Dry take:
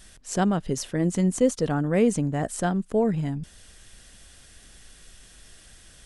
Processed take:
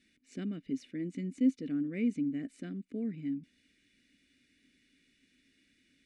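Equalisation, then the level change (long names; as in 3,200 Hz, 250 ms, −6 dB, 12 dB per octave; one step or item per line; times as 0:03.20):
formant filter i
Butterworth band-reject 3,200 Hz, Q 6.8
0.0 dB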